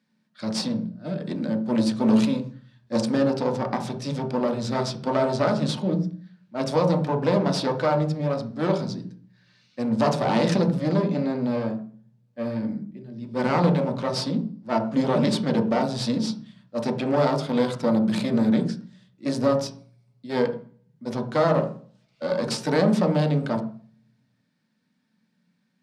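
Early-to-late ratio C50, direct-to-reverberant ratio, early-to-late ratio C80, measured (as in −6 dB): 10.5 dB, 2.0 dB, 15.0 dB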